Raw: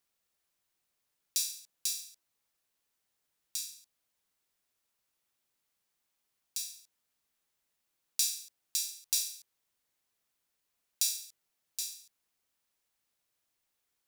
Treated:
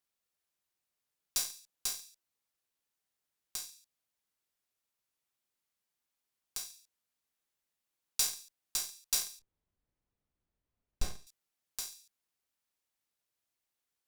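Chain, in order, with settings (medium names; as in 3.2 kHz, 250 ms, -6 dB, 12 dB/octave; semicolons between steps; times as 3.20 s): saturation -19 dBFS, distortion -16 dB; Chebyshev shaper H 3 -13 dB, 4 -24 dB, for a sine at -19 dBFS; 9.39–11.27 s: tilt EQ -5 dB/octave; trim +4 dB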